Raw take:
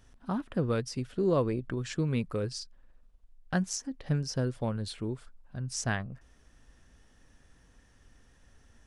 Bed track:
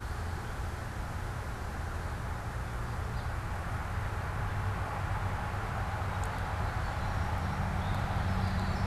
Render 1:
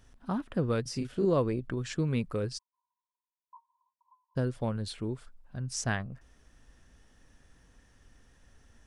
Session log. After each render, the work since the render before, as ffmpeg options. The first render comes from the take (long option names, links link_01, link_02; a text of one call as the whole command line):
ffmpeg -i in.wav -filter_complex "[0:a]asettb=1/sr,asplit=3[link_01][link_02][link_03];[link_01]atrim=end=0.824[link_04];[link_02]atrim=start=0.82:end=1.25,asetpts=PTS-STARTPTS,afade=type=in:duration=0.004:curve=qsin,afade=type=out:start_time=0.426:duration=0.004:curve=qsin,asplit=2[link_05][link_06];[link_06]adelay=35,volume=-4.5dB[link_07];[link_05][link_07]amix=inputs=2:normalize=0,atrim=end_sample=18963[link_08];[link_03]atrim=start=1.246[link_09];[link_04][link_08]acrossfade=duration=0.004:curve1=hsin:curve2=qsin[link_10];[link_10][link_09]acrossfade=duration=0.004:curve1=qsin:curve2=hsin,asplit=3[link_11][link_12][link_13];[link_11]afade=type=out:start_time=2.57:duration=0.02[link_14];[link_12]asuperpass=centerf=990:order=8:qfactor=8,afade=type=in:start_time=2.57:duration=0.02,afade=type=out:start_time=4.35:duration=0.02[link_15];[link_13]afade=type=in:start_time=4.35:duration=0.02[link_16];[link_14][link_15][link_16]amix=inputs=3:normalize=0" out.wav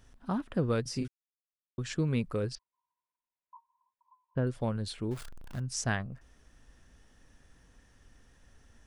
ffmpeg -i in.wav -filter_complex "[0:a]asettb=1/sr,asplit=3[link_01][link_02][link_03];[link_01]atrim=end=2.554[link_04];[link_02]atrim=start=2.55:end=4.47,asetpts=PTS-STARTPTS,afade=type=in:duration=0.004:curve=qsin,afade=type=out:start_time=1.916:duration=0.004:curve=qsin,lowpass=frequency=2800:width=0.5412,lowpass=frequency=2800:width=1.3066[link_05];[link_03]atrim=start=4.466[link_06];[link_04][link_05]acrossfade=duration=0.004:curve1=hsin:curve2=qsin[link_07];[link_07][link_06]acrossfade=duration=0.004:curve1=qsin:curve2=hsin,asettb=1/sr,asplit=3[link_08][link_09][link_10];[link_08]atrim=end=5.114[link_11];[link_09]atrim=start=5.11:end=5.6,asetpts=PTS-STARTPTS,afade=type=in:duration=0.004:curve=qsin,afade=type=out:start_time=0.486:duration=0.004:curve=qsin,aeval=exprs='val(0)+0.5*0.00891*sgn(val(0))':channel_layout=same[link_12];[link_10]atrim=start=5.596[link_13];[link_11][link_12]acrossfade=duration=0.004:curve1=hsin:curve2=qsin[link_14];[link_14][link_13]acrossfade=duration=0.004:curve1=qsin:curve2=hsin,asplit=3[link_15][link_16][link_17];[link_15]atrim=end=1.08,asetpts=PTS-STARTPTS,afade=type=out:start_time=1.076:duration=0.004:curve=hsin[link_18];[link_16]atrim=start=1.08:end=1.78,asetpts=PTS-STARTPTS,volume=0[link_19];[link_17]atrim=start=1.78,asetpts=PTS-STARTPTS,afade=type=in:duration=0.004:curve=hsin[link_20];[link_18][link_19][link_20]concat=n=3:v=0:a=1" out.wav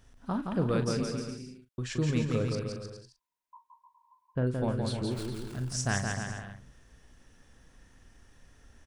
ffmpeg -i in.wav -filter_complex "[0:a]asplit=2[link_01][link_02];[link_02]adelay=40,volume=-10.5dB[link_03];[link_01][link_03]amix=inputs=2:normalize=0,aecho=1:1:170|306|414.8|501.8|571.5:0.631|0.398|0.251|0.158|0.1" out.wav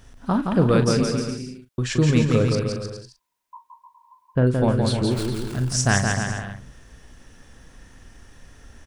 ffmpeg -i in.wav -af "volume=10.5dB" out.wav